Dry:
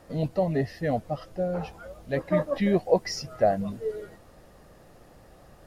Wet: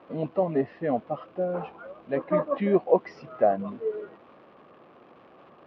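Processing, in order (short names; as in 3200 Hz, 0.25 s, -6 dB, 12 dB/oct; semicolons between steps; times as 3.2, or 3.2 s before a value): crackle 420/s -41 dBFS; speaker cabinet 220–2700 Hz, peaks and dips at 250 Hz +4 dB, 370 Hz +4 dB, 1100 Hz +8 dB, 1900 Hz -6 dB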